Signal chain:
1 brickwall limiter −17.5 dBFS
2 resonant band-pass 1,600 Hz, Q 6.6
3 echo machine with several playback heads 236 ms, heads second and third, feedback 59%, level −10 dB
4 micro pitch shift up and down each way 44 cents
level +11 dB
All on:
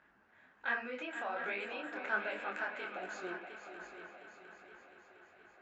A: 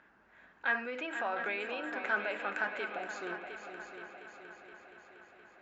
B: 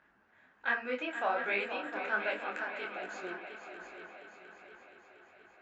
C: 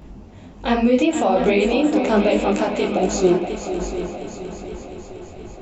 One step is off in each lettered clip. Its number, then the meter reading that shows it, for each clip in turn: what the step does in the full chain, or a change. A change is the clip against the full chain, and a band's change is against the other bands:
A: 4, change in momentary loudness spread −1 LU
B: 1, change in integrated loudness +4.5 LU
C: 2, 2 kHz band −16.0 dB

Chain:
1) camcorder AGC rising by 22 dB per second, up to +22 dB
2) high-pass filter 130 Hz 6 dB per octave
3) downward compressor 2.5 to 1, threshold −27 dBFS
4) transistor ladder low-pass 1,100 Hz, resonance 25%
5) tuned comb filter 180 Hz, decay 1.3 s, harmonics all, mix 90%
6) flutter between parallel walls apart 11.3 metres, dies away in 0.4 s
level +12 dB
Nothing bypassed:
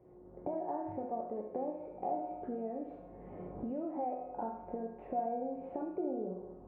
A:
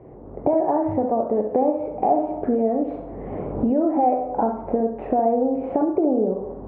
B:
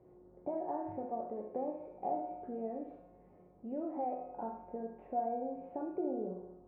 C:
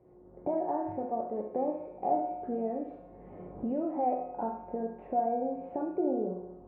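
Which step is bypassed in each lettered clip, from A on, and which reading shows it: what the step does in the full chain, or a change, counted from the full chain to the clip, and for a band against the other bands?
5, change in integrated loudness +17.5 LU
1, 125 Hz band −3.5 dB
3, average gain reduction 3.5 dB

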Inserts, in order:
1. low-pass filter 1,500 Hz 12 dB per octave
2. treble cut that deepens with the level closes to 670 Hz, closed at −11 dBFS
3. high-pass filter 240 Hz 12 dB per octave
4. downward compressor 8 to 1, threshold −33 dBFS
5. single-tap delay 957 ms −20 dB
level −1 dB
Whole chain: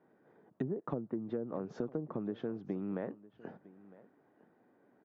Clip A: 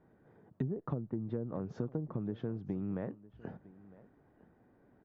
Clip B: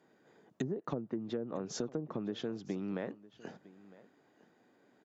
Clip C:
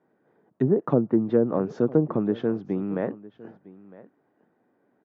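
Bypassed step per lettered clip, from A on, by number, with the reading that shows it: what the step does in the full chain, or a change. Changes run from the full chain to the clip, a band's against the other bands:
3, 125 Hz band +9.0 dB
1, 2 kHz band +4.5 dB
4, average gain reduction 12.5 dB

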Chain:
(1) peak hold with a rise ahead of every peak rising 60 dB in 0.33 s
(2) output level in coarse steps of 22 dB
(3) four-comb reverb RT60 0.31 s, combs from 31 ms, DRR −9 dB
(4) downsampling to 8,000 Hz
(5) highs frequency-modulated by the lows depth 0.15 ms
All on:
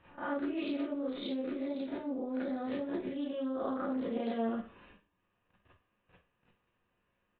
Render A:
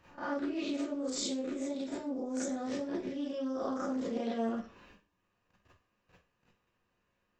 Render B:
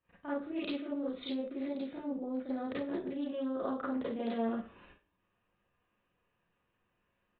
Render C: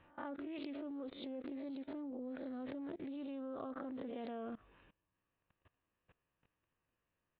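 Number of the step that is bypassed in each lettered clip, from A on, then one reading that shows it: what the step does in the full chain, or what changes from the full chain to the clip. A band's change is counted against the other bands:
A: 4, 4 kHz band +5.0 dB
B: 1, 4 kHz band +1.5 dB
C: 3, change in momentary loudness spread −1 LU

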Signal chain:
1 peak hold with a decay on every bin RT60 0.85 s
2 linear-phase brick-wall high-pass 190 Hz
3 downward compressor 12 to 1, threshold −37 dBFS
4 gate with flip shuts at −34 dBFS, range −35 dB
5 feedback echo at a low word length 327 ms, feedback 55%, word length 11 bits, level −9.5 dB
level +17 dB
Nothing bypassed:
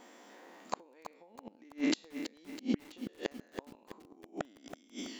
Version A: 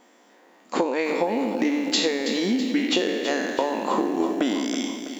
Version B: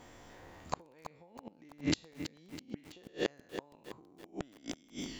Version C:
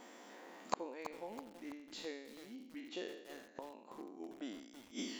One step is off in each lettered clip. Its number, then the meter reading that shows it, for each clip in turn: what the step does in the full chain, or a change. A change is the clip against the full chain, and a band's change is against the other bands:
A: 4, change in momentary loudness spread −17 LU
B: 2, 125 Hz band +6.0 dB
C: 3, average gain reduction 7.5 dB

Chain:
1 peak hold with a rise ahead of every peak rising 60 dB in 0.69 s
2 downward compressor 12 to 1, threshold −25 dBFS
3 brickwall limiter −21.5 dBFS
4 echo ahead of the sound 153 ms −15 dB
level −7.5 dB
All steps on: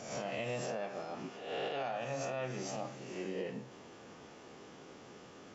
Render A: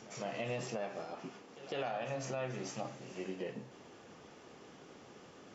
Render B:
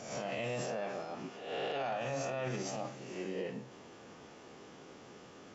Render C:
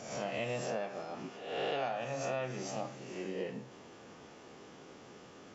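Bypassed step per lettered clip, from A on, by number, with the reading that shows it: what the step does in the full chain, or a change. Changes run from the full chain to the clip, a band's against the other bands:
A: 1, 125 Hz band +2.0 dB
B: 2, average gain reduction 3.5 dB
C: 3, change in crest factor +4.5 dB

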